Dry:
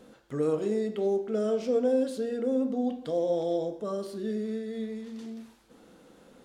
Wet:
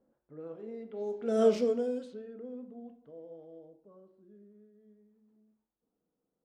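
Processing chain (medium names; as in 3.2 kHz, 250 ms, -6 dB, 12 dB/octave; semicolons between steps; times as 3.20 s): Doppler pass-by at 1.48 s, 16 m/s, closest 1.4 m; level-controlled noise filter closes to 960 Hz, open at -34.5 dBFS; trim +5 dB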